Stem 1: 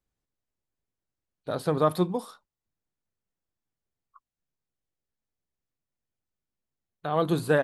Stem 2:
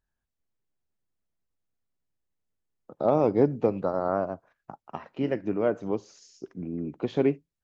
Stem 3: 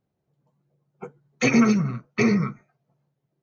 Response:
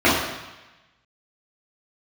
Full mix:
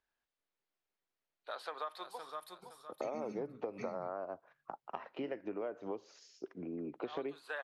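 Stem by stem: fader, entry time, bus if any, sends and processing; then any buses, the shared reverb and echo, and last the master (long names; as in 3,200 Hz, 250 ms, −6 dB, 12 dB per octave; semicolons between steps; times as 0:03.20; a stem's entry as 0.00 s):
0.0 dB, 0.00 s, bus A, no send, echo send −14 dB, high-pass filter 1,000 Hz 12 dB per octave; automatic ducking −8 dB, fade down 1.75 s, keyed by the second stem
+0.5 dB, 0.00 s, bus A, no send, no echo send, no processing
−17.0 dB, 1.60 s, no bus, no send, no echo send, amplitude modulation by smooth noise, depth 60%
bus A: 0.0 dB, three-way crossover with the lows and the highs turned down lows −16 dB, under 320 Hz, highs −16 dB, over 4,900 Hz; downward compressor 2.5 to 1, threshold −27 dBFS, peak gain reduction 6.5 dB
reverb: not used
echo: repeating echo 514 ms, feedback 30%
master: downward compressor 4 to 1, threshold −38 dBFS, peak gain reduction 12.5 dB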